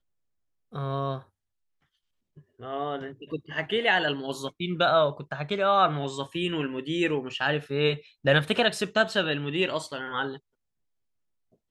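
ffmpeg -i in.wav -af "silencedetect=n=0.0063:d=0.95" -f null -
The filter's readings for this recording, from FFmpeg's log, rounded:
silence_start: 1.23
silence_end: 2.37 | silence_duration: 1.14
silence_start: 10.38
silence_end: 11.70 | silence_duration: 1.32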